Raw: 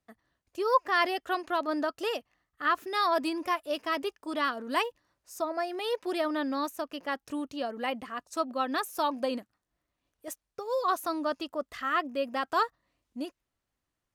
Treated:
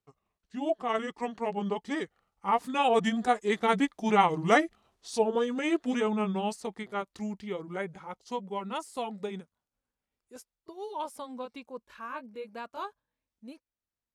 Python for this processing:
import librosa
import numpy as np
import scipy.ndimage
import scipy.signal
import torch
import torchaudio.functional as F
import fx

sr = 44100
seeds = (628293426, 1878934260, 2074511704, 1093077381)

y = fx.pitch_glide(x, sr, semitones=-9.5, runs='ending unshifted')
y = fx.doppler_pass(y, sr, speed_mps=23, closest_m=26.0, pass_at_s=4.33)
y = y * librosa.db_to_amplitude(8.0)